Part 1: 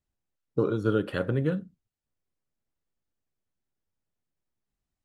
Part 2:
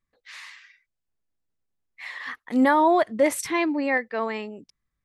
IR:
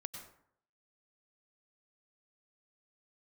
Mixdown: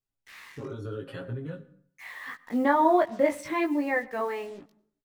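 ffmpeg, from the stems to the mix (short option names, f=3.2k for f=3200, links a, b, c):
-filter_complex "[0:a]aecho=1:1:7.4:0.9,alimiter=limit=-20dB:level=0:latency=1:release=64,volume=-6.5dB,asplit=2[a][b];[b]volume=-9dB[c];[1:a]lowpass=f=1.9k:p=1,acrusher=bits=7:mix=0:aa=0.5,volume=-0.5dB,asplit=2[d][e];[e]volume=-11.5dB[f];[2:a]atrim=start_sample=2205[g];[c][f]amix=inputs=2:normalize=0[h];[h][g]afir=irnorm=-1:irlink=0[i];[a][d][i]amix=inputs=3:normalize=0,flanger=delay=17:depth=4:speed=0.78"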